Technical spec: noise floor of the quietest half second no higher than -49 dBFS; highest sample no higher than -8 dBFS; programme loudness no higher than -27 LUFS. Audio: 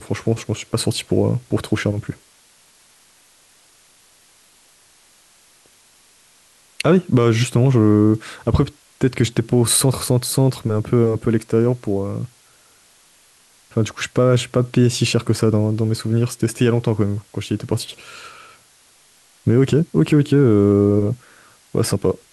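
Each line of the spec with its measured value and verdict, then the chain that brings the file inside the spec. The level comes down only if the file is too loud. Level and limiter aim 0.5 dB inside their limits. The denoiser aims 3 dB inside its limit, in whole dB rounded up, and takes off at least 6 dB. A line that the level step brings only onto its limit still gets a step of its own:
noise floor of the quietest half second -53 dBFS: pass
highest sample -4.5 dBFS: fail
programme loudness -18.5 LUFS: fail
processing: trim -9 dB

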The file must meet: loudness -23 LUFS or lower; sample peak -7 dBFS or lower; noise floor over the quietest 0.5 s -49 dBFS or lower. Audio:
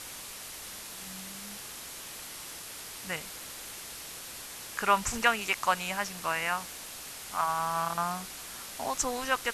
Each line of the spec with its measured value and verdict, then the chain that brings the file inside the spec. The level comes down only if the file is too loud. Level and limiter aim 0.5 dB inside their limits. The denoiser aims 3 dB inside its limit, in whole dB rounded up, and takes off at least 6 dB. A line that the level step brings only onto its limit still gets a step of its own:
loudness -33.0 LUFS: pass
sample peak -8.5 dBFS: pass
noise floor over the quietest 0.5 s -43 dBFS: fail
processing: noise reduction 9 dB, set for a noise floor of -43 dBFS

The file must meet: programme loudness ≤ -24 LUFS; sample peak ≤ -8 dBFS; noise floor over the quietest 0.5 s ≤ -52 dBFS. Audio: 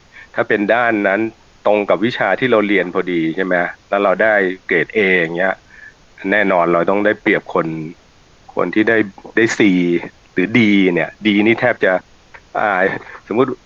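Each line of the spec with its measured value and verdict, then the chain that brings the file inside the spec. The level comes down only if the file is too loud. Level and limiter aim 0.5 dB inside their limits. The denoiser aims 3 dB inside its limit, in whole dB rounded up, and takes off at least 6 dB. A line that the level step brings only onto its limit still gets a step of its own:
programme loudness -15.5 LUFS: fail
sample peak -1.5 dBFS: fail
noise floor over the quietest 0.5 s -48 dBFS: fail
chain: trim -9 dB

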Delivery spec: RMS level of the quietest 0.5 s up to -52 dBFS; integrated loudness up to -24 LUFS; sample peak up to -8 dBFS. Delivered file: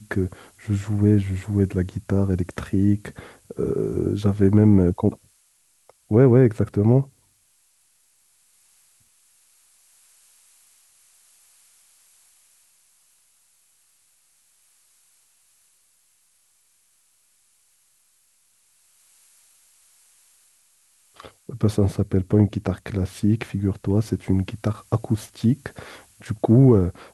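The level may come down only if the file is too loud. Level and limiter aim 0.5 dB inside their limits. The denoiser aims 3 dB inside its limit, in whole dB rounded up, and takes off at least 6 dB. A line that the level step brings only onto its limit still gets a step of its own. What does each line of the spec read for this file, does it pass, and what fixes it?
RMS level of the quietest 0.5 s -63 dBFS: pass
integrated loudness -21.0 LUFS: fail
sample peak -4.5 dBFS: fail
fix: trim -3.5 dB; peak limiter -8.5 dBFS

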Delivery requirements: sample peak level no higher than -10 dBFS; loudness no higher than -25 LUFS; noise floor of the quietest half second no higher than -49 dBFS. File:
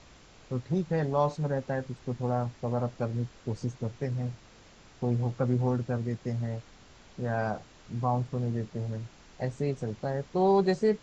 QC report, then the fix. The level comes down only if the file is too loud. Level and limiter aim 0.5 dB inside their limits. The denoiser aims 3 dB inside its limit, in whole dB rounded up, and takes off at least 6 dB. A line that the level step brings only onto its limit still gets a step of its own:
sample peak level -14.0 dBFS: pass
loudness -31.0 LUFS: pass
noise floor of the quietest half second -55 dBFS: pass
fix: none needed

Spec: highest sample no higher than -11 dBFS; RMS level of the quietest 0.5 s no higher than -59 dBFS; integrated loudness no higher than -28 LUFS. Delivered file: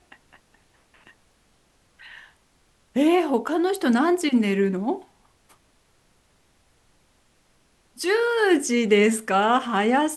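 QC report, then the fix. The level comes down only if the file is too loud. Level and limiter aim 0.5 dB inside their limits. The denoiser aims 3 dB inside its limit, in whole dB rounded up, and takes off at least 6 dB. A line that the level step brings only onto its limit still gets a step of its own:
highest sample -6.5 dBFS: fail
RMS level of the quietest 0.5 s -63 dBFS: pass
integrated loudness -21.5 LUFS: fail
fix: trim -7 dB

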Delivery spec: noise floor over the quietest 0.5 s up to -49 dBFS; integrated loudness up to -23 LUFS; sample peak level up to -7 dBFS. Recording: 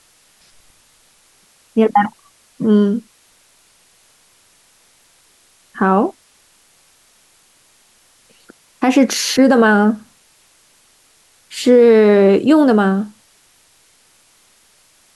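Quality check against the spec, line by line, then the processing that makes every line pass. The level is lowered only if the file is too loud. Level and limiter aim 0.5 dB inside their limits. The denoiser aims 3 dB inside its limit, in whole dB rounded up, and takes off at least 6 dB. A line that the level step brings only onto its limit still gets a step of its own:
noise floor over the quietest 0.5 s -54 dBFS: pass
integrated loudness -14.0 LUFS: fail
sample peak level -2.5 dBFS: fail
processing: trim -9.5 dB

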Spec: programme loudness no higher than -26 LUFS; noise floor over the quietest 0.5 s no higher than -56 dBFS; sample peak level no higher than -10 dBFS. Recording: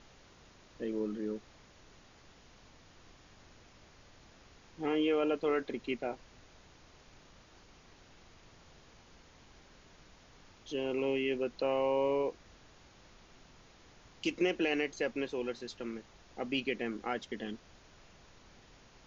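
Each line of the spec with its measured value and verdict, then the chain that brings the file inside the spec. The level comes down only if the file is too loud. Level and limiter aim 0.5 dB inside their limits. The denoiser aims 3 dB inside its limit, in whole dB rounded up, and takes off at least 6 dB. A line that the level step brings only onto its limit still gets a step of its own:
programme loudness -35.0 LUFS: pass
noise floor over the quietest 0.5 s -59 dBFS: pass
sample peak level -18.5 dBFS: pass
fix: none needed

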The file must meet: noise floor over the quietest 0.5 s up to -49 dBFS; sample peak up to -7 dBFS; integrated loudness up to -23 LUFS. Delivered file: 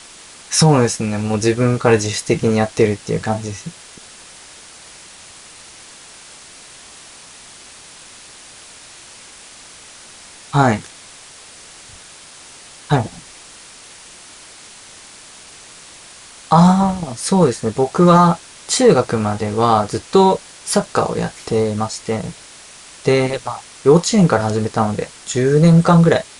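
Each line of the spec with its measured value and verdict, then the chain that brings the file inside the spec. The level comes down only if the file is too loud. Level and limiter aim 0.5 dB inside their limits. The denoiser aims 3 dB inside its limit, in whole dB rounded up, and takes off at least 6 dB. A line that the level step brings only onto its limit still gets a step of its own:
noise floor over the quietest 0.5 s -40 dBFS: fail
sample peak -1.5 dBFS: fail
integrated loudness -16.0 LUFS: fail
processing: noise reduction 6 dB, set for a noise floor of -40 dBFS; trim -7.5 dB

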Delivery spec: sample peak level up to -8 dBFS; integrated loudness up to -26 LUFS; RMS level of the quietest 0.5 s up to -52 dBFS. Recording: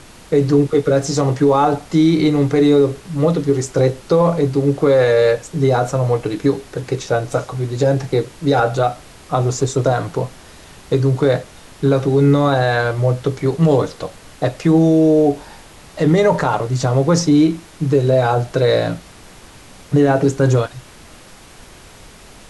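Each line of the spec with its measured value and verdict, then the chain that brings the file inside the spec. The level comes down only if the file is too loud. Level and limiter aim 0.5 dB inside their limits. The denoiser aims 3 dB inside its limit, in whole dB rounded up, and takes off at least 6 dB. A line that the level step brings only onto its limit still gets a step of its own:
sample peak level -5.0 dBFS: fail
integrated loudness -16.5 LUFS: fail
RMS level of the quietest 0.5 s -41 dBFS: fail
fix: noise reduction 6 dB, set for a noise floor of -41 dBFS; trim -10 dB

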